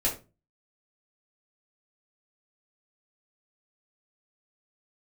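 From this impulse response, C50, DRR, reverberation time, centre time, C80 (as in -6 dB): 10.0 dB, -5.5 dB, 0.30 s, 22 ms, 16.0 dB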